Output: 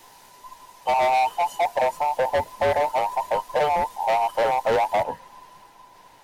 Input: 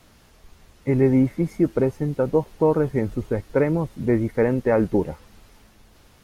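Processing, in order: band inversion scrambler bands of 1000 Hz; high shelf 4200 Hz +7.5 dB, from 5.03 s -2.5 dB; overloaded stage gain 19.5 dB; gain +2 dB

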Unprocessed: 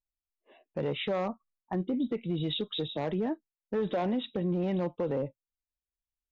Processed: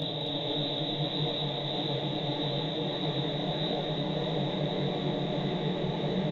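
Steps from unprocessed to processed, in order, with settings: limiter -33 dBFS, peak gain reduction 10 dB; high shelf 3800 Hz +10 dB; Paulstretch 48×, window 0.50 s, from 2.94; low shelf 280 Hz +9.5 dB; on a send: loudspeakers at several distances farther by 72 m -9 dB, 91 m -3 dB; on the sum: detuned doubles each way 56 cents; gain +7.5 dB

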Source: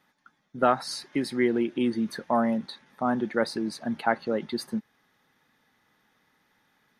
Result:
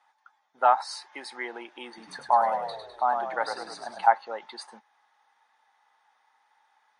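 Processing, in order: resonant high-pass 840 Hz, resonance Q 4.8; 1.87–4.07 frequency-shifting echo 0.102 s, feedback 53%, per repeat -40 Hz, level -6 dB; gain -3.5 dB; MP3 48 kbps 22050 Hz

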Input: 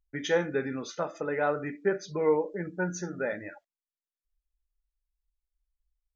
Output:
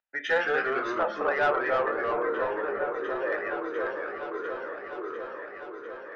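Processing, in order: 1.81–3.32 vowel filter e; in parallel at -8 dB: soft clip -23 dBFS, distortion -14 dB; on the sum: three-band isolator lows -22 dB, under 530 Hz, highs -22 dB, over 2600 Hz; notch comb 1100 Hz; overdrive pedal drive 14 dB, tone 4600 Hz, clips at -14.5 dBFS; echoes that change speed 0.134 s, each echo -2 st, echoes 3; on a send: repeats that get brighter 0.699 s, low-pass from 750 Hz, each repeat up 1 oct, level -6 dB

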